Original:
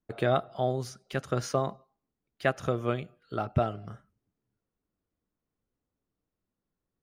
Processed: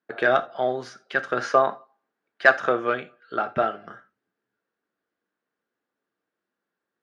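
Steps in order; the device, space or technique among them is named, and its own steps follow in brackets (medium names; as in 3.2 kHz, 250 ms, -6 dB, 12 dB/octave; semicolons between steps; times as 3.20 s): intercom (band-pass 340–4000 Hz; peaking EQ 1.6 kHz +11 dB 0.4 oct; saturation -13 dBFS, distortion -19 dB); 1.40–2.80 s: peaking EQ 910 Hz +5 dB 2.2 oct; gated-style reverb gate 110 ms falling, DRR 9 dB; trim +5.5 dB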